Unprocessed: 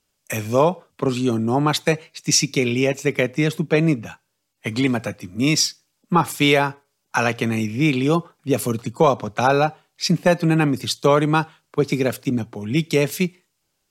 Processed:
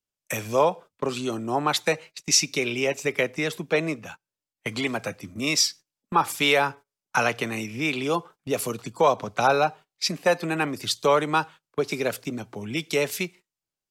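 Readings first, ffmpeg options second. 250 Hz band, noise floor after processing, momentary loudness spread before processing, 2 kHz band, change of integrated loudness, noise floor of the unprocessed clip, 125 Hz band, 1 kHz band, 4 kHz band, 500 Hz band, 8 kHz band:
−10.0 dB, below −85 dBFS, 8 LU, −2.0 dB, −4.5 dB, −73 dBFS, −12.5 dB, −2.5 dB, −2.0 dB, −4.5 dB, −2.0 dB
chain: -filter_complex "[0:a]agate=range=-17dB:threshold=-37dB:ratio=16:detection=peak,acrossover=split=400|1100|1800[link_01][link_02][link_03][link_04];[link_01]acompressor=threshold=-32dB:ratio=5[link_05];[link_05][link_02][link_03][link_04]amix=inputs=4:normalize=0,volume=-2dB"

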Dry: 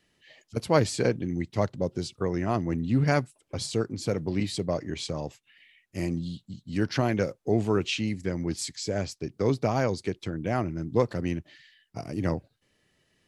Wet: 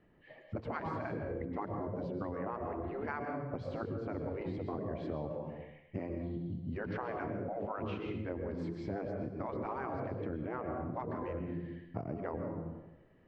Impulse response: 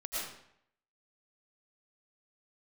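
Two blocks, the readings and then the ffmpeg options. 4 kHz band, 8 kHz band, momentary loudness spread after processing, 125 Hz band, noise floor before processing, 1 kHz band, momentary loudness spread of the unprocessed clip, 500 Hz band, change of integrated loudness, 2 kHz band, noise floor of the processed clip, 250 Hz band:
−24.0 dB, below −35 dB, 4 LU, −12.0 dB, −72 dBFS, −6.5 dB, 10 LU, −10.0 dB, −10.5 dB, −10.5 dB, −60 dBFS, −10.0 dB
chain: -filter_complex "[0:a]lowpass=1200,aemphasis=mode=reproduction:type=50fm,asplit=2[link_01][link_02];[1:a]atrim=start_sample=2205,asetrate=38367,aresample=44100[link_03];[link_02][link_03]afir=irnorm=-1:irlink=0,volume=-6dB[link_04];[link_01][link_04]amix=inputs=2:normalize=0,afftfilt=real='re*lt(hypot(re,im),0.251)':imag='im*lt(hypot(re,im),0.251)':win_size=1024:overlap=0.75,acompressor=threshold=-39dB:ratio=6,volume=3.5dB"

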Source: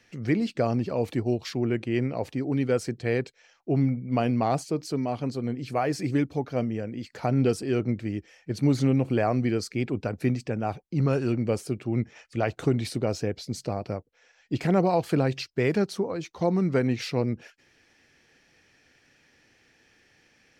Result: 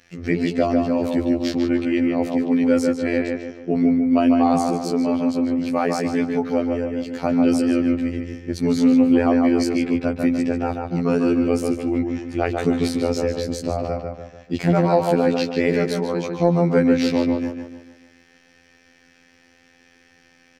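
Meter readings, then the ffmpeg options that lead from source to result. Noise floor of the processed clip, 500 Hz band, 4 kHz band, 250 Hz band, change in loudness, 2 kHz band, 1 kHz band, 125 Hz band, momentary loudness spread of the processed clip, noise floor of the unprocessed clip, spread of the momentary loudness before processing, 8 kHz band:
−56 dBFS, +6.5 dB, +5.5 dB, +9.0 dB, +7.0 dB, +6.0 dB, +6.0 dB, −0.5 dB, 9 LU, −64 dBFS, 8 LU, +5.0 dB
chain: -filter_complex "[0:a]afftfilt=real='hypot(re,im)*cos(PI*b)':imag='0':win_size=2048:overlap=0.75,asplit=2[link_01][link_02];[link_02]adelay=147,lowpass=frequency=2600:poles=1,volume=-3.5dB,asplit=2[link_03][link_04];[link_04]adelay=147,lowpass=frequency=2600:poles=1,volume=0.45,asplit=2[link_05][link_06];[link_06]adelay=147,lowpass=frequency=2600:poles=1,volume=0.45,asplit=2[link_07][link_08];[link_08]adelay=147,lowpass=frequency=2600:poles=1,volume=0.45,asplit=2[link_09][link_10];[link_10]adelay=147,lowpass=frequency=2600:poles=1,volume=0.45,asplit=2[link_11][link_12];[link_12]adelay=147,lowpass=frequency=2600:poles=1,volume=0.45[link_13];[link_01][link_03][link_05][link_07][link_09][link_11][link_13]amix=inputs=7:normalize=0,acontrast=79,volume=1.5dB"

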